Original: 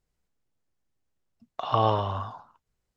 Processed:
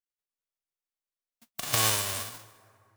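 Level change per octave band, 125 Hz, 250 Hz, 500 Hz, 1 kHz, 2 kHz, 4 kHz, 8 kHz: −7.0 dB, −7.0 dB, −10.0 dB, −9.5 dB, +12.5 dB, +9.0 dB, can't be measured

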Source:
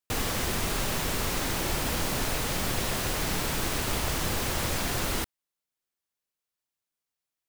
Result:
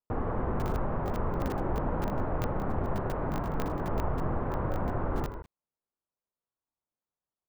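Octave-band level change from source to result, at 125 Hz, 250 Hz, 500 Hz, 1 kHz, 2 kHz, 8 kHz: +1.0, +0.5, +1.0, −0.5, −11.5, −26.0 decibels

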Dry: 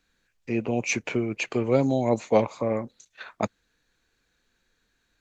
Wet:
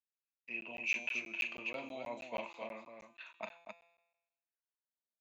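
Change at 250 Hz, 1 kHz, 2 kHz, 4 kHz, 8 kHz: −25.0 dB, −16.0 dB, −4.0 dB, −7.5 dB, can't be measured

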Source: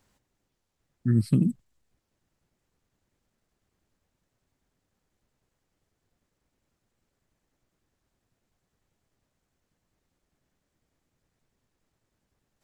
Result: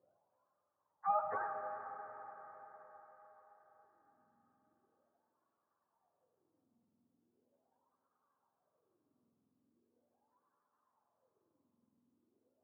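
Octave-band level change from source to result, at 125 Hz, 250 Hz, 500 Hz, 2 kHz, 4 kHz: below −40 dB, −38.0 dB, −1.0 dB, can't be measured, below −25 dB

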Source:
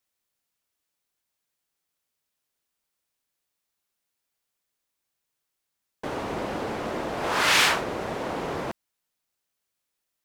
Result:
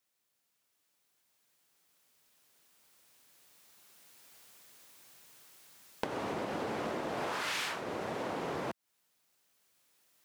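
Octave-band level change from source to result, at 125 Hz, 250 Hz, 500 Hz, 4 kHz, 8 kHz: −8.0, −6.5, −7.0, −14.5, −14.0 decibels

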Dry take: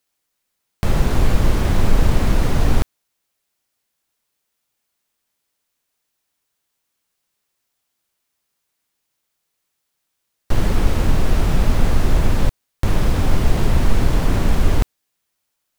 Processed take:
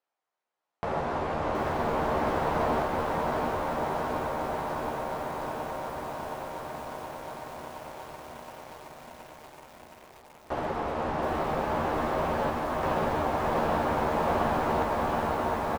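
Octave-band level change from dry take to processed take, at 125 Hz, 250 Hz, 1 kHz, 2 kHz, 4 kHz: −16.5, −7.5, +4.0, −3.0, −10.0 decibels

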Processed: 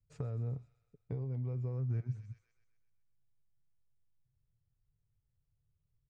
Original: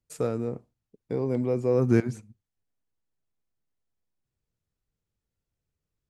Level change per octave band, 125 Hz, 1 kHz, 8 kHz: −4.5 dB, below −15 dB, below −20 dB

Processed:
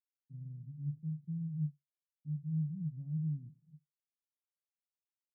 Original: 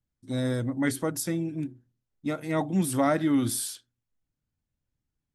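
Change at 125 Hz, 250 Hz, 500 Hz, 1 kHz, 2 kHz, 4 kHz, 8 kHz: −4.0 dB, −14.5 dB, below −40 dB, below −40 dB, below −40 dB, below −40 dB, below −40 dB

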